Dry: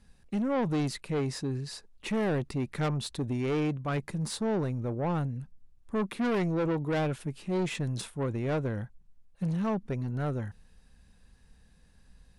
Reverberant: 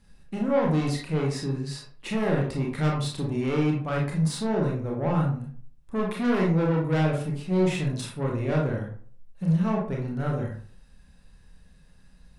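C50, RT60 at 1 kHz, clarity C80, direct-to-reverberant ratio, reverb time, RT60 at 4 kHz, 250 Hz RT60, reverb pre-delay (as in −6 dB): 4.5 dB, 0.45 s, 9.5 dB, −2.0 dB, 0.45 s, 0.30 s, 0.45 s, 25 ms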